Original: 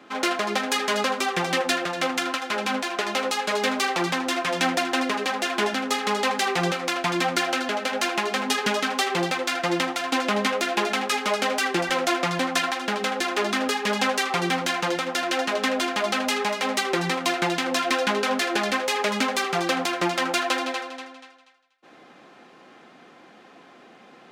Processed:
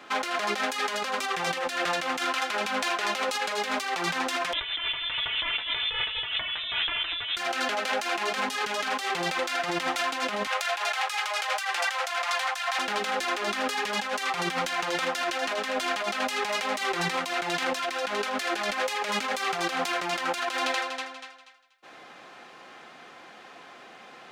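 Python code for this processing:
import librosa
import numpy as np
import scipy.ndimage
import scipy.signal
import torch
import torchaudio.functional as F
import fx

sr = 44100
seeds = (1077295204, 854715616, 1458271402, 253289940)

y = fx.freq_invert(x, sr, carrier_hz=3800, at=(4.53, 7.37))
y = fx.highpass(y, sr, hz=660.0, slope=24, at=(10.47, 12.79))
y = fx.peak_eq(y, sr, hz=240.0, db=-10.5, octaves=2.1)
y = fx.over_compress(y, sr, threshold_db=-31.0, ratio=-1.0)
y = F.gain(torch.from_numpy(y), 1.5).numpy()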